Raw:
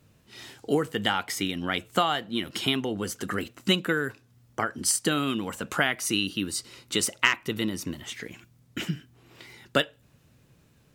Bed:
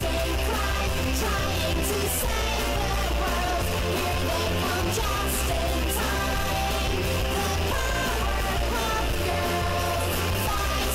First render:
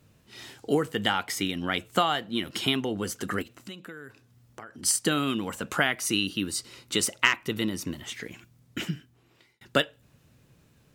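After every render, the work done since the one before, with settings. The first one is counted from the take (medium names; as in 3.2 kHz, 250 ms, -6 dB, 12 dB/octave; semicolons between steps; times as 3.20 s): 3.42–4.83 s: compression 3:1, threshold -44 dBFS; 8.78–9.61 s: fade out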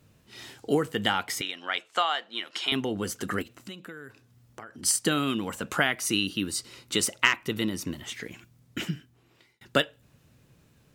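1.41–2.72 s: band-pass 680–6300 Hz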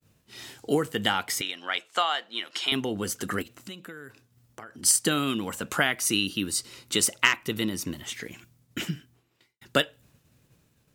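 expander -55 dBFS; treble shelf 5.5 kHz +5.5 dB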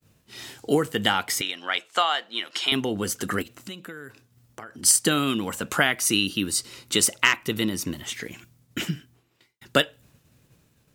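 trim +3 dB; peak limiter -3 dBFS, peak gain reduction 2.5 dB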